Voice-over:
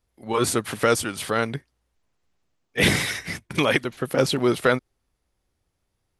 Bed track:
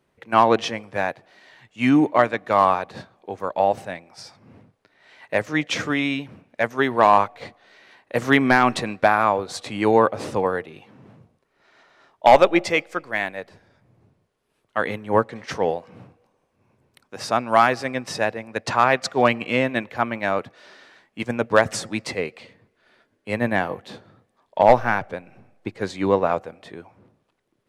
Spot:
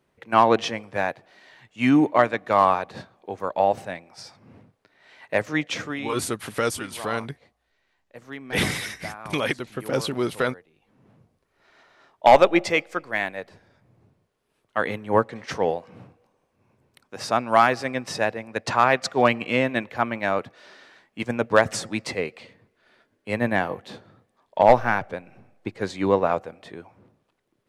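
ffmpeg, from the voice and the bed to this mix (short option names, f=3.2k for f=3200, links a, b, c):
-filter_complex "[0:a]adelay=5750,volume=-4.5dB[a];[1:a]volume=19dB,afade=t=out:st=5.48:d=0.75:silence=0.1,afade=t=in:st=10.79:d=0.88:silence=0.1[b];[a][b]amix=inputs=2:normalize=0"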